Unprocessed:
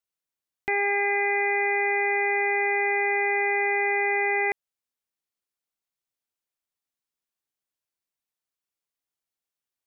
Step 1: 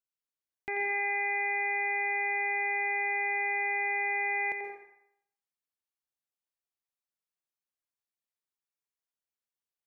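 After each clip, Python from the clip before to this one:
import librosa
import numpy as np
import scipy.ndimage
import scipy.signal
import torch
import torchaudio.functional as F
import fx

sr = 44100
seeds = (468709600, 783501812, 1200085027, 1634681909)

y = fx.echo_banded(x, sr, ms=87, feedback_pct=43, hz=1200.0, wet_db=-4.0)
y = fx.rev_plate(y, sr, seeds[0], rt60_s=0.69, hf_ratio=0.8, predelay_ms=115, drr_db=5.5)
y = y * 10.0 ** (-9.0 / 20.0)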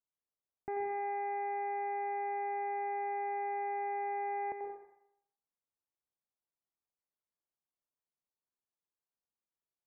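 y = scipy.signal.sosfilt(scipy.signal.butter(4, 1200.0, 'lowpass', fs=sr, output='sos'), x)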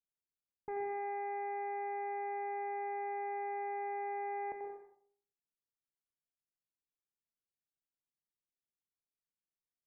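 y = fx.env_lowpass(x, sr, base_hz=330.0, full_db=-38.5)
y = fx.room_shoebox(y, sr, seeds[1], volume_m3=130.0, walls='furnished', distance_m=0.4)
y = y * 10.0 ** (-2.5 / 20.0)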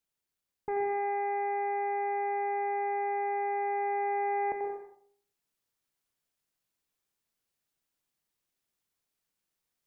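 y = fx.rider(x, sr, range_db=10, speed_s=2.0)
y = y * 10.0 ** (8.0 / 20.0)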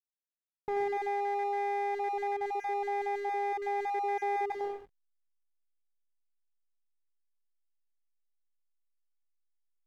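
y = fx.spec_dropout(x, sr, seeds[2], share_pct=21)
y = fx.backlash(y, sr, play_db=-42.0)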